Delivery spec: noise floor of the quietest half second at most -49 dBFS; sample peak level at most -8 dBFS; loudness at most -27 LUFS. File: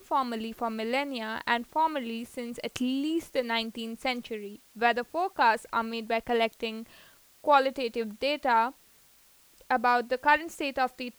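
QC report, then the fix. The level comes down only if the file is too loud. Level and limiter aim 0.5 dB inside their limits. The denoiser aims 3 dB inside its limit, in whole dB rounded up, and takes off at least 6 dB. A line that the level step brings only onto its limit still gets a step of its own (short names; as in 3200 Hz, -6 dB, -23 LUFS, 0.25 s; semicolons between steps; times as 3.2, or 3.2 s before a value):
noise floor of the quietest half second -60 dBFS: OK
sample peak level -9.0 dBFS: OK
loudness -29.0 LUFS: OK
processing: none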